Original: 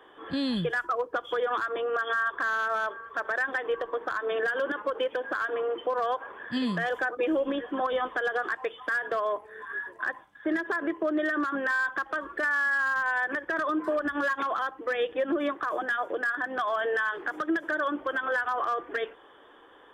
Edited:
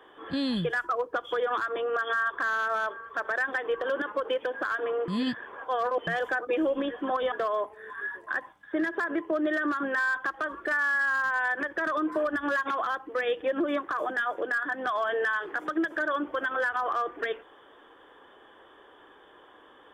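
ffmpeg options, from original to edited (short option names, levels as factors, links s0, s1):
-filter_complex "[0:a]asplit=5[s0][s1][s2][s3][s4];[s0]atrim=end=3.842[s5];[s1]atrim=start=4.538:end=5.782[s6];[s2]atrim=start=5.778:end=6.772,asetpts=PTS-STARTPTS,areverse[s7];[s3]atrim=start=6.768:end=8.022[s8];[s4]atrim=start=9.038[s9];[s5][s6]acrossfade=d=0.004:c1=hsin:c2=hsin[s10];[s10][s7]acrossfade=d=0.004:c1=hsin:c2=hsin[s11];[s11][s8]acrossfade=d=0.004:c1=hsin:c2=hsin[s12];[s12][s9]acrossfade=d=0.004:c1=hsin:c2=hsin"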